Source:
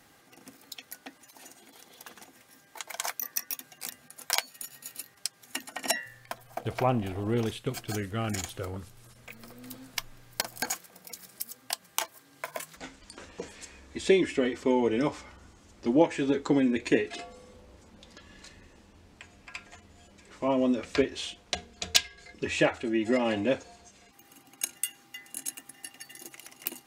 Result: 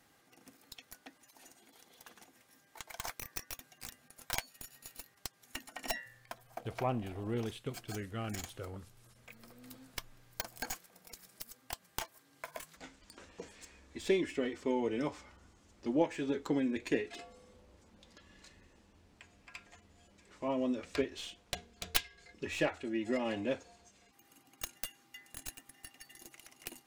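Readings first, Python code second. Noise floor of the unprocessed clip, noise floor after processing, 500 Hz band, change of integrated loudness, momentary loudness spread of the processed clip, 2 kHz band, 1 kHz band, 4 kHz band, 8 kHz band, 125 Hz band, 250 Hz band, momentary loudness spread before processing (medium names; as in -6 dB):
-60 dBFS, -68 dBFS, -8.0 dB, -8.0 dB, 21 LU, -8.0 dB, -8.0 dB, -10.0 dB, -11.0 dB, -8.0 dB, -8.0 dB, 20 LU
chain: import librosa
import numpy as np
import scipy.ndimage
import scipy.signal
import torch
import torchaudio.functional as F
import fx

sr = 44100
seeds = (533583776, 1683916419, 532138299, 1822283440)

y = fx.tracing_dist(x, sr, depth_ms=0.17)
y = y * 10.0 ** (-8.0 / 20.0)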